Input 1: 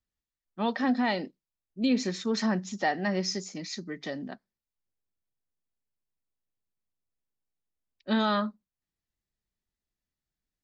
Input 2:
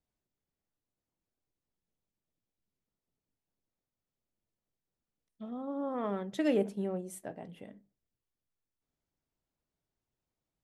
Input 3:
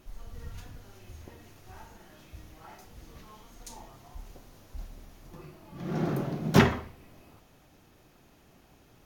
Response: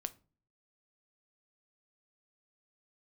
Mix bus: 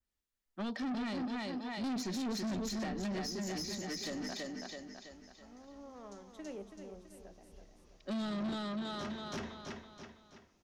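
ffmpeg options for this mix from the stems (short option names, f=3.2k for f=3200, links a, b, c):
-filter_complex "[0:a]adynamicequalizer=threshold=0.00562:dfrequency=2700:dqfactor=0.7:tfrequency=2700:tqfactor=0.7:attack=5:release=100:ratio=0.375:range=3.5:mode=boostabove:tftype=highshelf,volume=0.5dB,asplit=3[a][b][c];[b]volume=-5dB[d];[1:a]volume=-15.5dB,asplit=2[e][f];[f]volume=-8dB[g];[2:a]lowpass=f=5.9k:t=q:w=2.7,adelay=2450,volume=-6dB,asplit=2[h][i];[i]volume=-11dB[j];[c]apad=whole_len=507239[k];[h][k]sidechaingate=range=-15dB:threshold=-37dB:ratio=16:detection=peak[l];[d][g][j]amix=inputs=3:normalize=0,aecho=0:1:329|658|987|1316|1645|1974:1|0.44|0.194|0.0852|0.0375|0.0165[m];[a][e][l][m]amix=inputs=4:normalize=0,acrossover=split=370[n][o];[o]acompressor=threshold=-36dB:ratio=10[p];[n][p]amix=inputs=2:normalize=0,equalizer=f=130:t=o:w=0.49:g=-13,asoftclip=type=tanh:threshold=-34dB"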